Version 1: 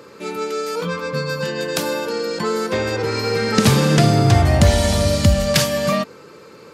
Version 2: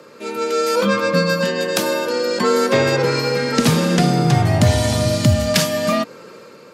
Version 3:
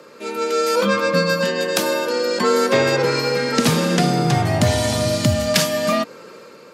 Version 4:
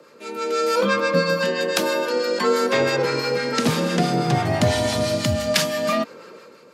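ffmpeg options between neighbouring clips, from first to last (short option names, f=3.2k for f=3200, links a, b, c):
-af "afreqshift=27,dynaudnorm=f=110:g=9:m=9dB,volume=-1dB"
-af "lowshelf=f=130:g=-8"
-filter_complex "[0:a]acrossover=split=180|5000[a][b][c];[b]dynaudnorm=f=130:g=7:m=6.5dB[d];[a][d][c]amix=inputs=3:normalize=0,acrossover=split=830[e][f];[e]aeval=exprs='val(0)*(1-0.5/2+0.5/2*cos(2*PI*6*n/s))':c=same[g];[f]aeval=exprs='val(0)*(1-0.5/2-0.5/2*cos(2*PI*6*n/s))':c=same[h];[g][h]amix=inputs=2:normalize=0,volume=-3.5dB"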